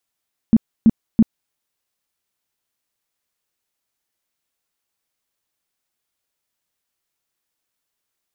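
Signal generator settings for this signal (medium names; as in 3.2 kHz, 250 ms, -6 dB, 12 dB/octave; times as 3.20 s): tone bursts 224 Hz, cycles 8, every 0.33 s, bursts 3, -6.5 dBFS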